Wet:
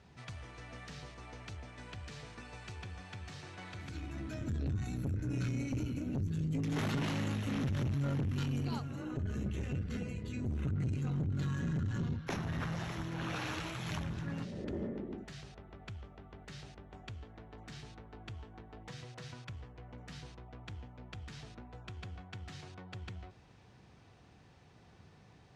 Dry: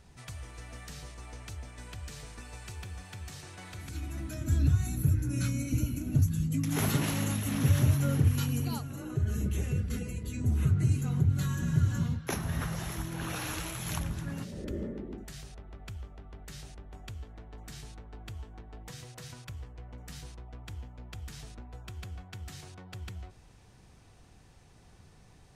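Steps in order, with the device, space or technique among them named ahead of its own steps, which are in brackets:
valve radio (band-pass filter 88–4,400 Hz; tube saturation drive 29 dB, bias 0.4; saturating transformer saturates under 140 Hz)
level +1 dB

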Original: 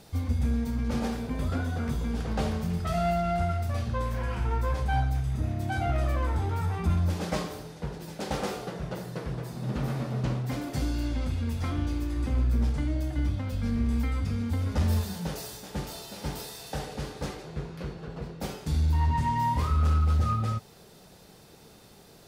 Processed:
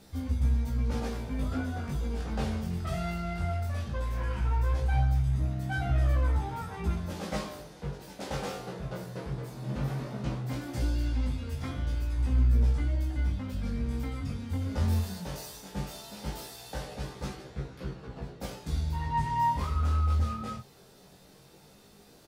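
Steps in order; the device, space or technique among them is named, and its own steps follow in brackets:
double-tracked vocal (double-tracking delay 15 ms −6 dB; chorus effect 0.17 Hz, delay 15.5 ms, depth 7.1 ms)
level −1 dB

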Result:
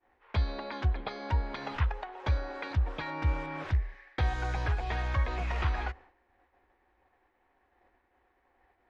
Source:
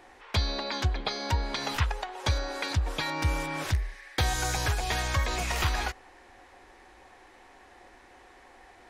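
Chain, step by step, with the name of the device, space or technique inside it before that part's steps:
hearing-loss simulation (low-pass filter 2,300 Hz 12 dB per octave; downward expander −45 dBFS)
parametric band 65 Hz +6 dB 0.54 octaves
level −4 dB

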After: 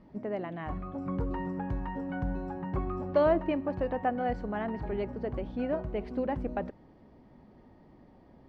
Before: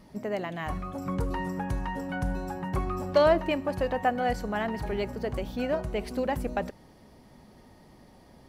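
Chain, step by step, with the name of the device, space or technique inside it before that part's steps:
phone in a pocket (low-pass filter 3,700 Hz 12 dB per octave; parametric band 300 Hz +4 dB 0.6 octaves; high-shelf EQ 2,300 Hz −11 dB)
level −3 dB

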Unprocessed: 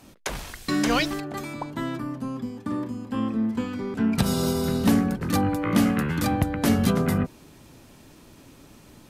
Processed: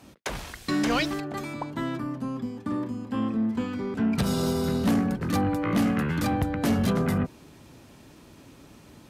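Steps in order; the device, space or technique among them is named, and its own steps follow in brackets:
high-pass filter 40 Hz
high-shelf EQ 7,200 Hz −5.5 dB
saturation between pre-emphasis and de-emphasis (high-shelf EQ 7,600 Hz +8.5 dB; soft clipping −17 dBFS, distortion −15 dB; high-shelf EQ 7,600 Hz −8.5 dB)

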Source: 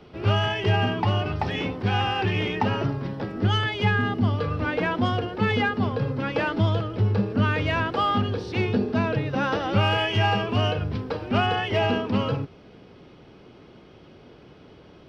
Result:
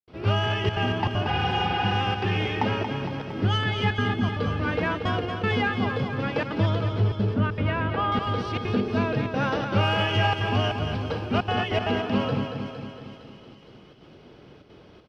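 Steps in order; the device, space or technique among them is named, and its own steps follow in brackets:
trance gate with a delay (gate pattern ".xxxxxxxx.xxxx" 196 BPM −60 dB; repeating echo 230 ms, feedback 58%, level −7 dB)
0:01.30–0:01.92: healed spectral selection 250–5,300 Hz after
0:07.34–0:08.12: high-frequency loss of the air 310 metres
delay with a high-pass on its return 461 ms, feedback 55%, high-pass 4,100 Hz, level −9 dB
level −1.5 dB

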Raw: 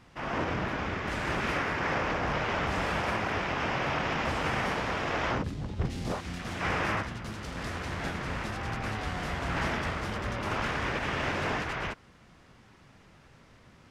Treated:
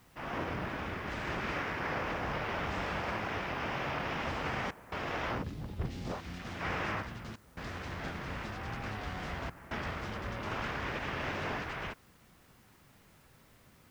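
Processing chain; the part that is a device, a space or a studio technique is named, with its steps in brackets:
worn cassette (low-pass filter 6,400 Hz 12 dB per octave; tape wow and flutter; tape dropouts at 0:04.71/0:07.36/0:09.50, 208 ms −16 dB; white noise bed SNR 31 dB)
level −5.5 dB

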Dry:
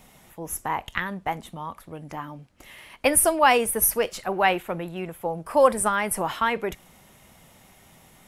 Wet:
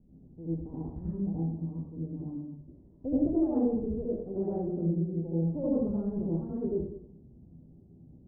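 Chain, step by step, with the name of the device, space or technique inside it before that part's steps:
next room (low-pass filter 350 Hz 24 dB per octave; convolution reverb RT60 0.75 s, pre-delay 70 ms, DRR −8.5 dB)
level −5 dB

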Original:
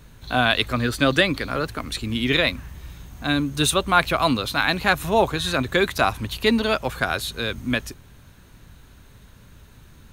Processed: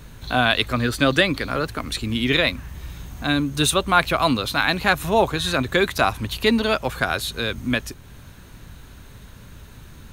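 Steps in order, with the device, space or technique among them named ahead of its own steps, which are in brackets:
parallel compression (in parallel at −1 dB: downward compressor, threshold −38 dBFS, peak gain reduction 24 dB)

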